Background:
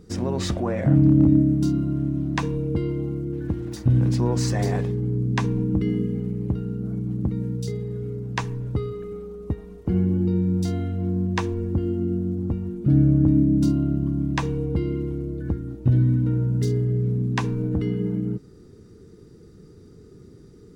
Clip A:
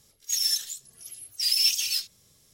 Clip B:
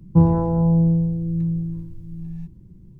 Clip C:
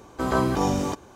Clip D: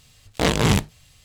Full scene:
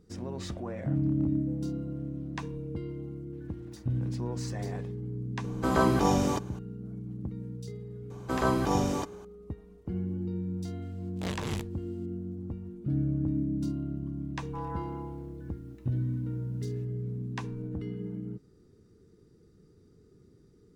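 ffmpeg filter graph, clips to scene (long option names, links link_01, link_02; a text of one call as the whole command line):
ffmpeg -i bed.wav -i cue0.wav -i cue1.wav -i cue2.wav -i cue3.wav -filter_complex "[2:a]asplit=2[link_01][link_02];[3:a]asplit=2[link_03][link_04];[0:a]volume=-12dB[link_05];[link_01]asplit=3[link_06][link_07][link_08];[link_06]bandpass=frequency=530:width_type=q:width=8,volume=0dB[link_09];[link_07]bandpass=frequency=1840:width_type=q:width=8,volume=-6dB[link_10];[link_08]bandpass=frequency=2480:width_type=q:width=8,volume=-9dB[link_11];[link_09][link_10][link_11]amix=inputs=3:normalize=0[link_12];[link_02]highpass=frequency=1100:width=0.5412,highpass=frequency=1100:width=1.3066[link_13];[link_12]atrim=end=2.99,asetpts=PTS-STARTPTS,volume=-17.5dB,afade=type=in:duration=0.004:curve=hsin,afade=type=out:start_time=2.986:duration=0.004:curve=hsin,adelay=1310[link_14];[link_03]atrim=end=1.15,asetpts=PTS-STARTPTS,volume=-1.5dB,afade=type=in:duration=0.004:curve=hsin,afade=type=out:start_time=1.146:duration=0.004:curve=hsin,adelay=5440[link_15];[link_04]atrim=end=1.15,asetpts=PTS-STARTPTS,volume=-4dB,afade=type=in:duration=0.004:curve=hsin,afade=type=out:start_time=1.146:duration=0.004:curve=hsin,adelay=357210S[link_16];[4:a]atrim=end=1.24,asetpts=PTS-STARTPTS,volume=-17.5dB,afade=type=in:duration=0.004:curve=hsin,afade=type=out:start_time=1.236:duration=0.004:curve=hsin,adelay=477162S[link_17];[link_13]atrim=end=2.99,asetpts=PTS-STARTPTS,volume=-1.5dB,afade=type=in:duration=0.004:curve=hsin,afade=type=out:start_time=2.986:duration=0.004:curve=hsin,adelay=14380[link_18];[link_05][link_14][link_15][link_16][link_17][link_18]amix=inputs=6:normalize=0" out.wav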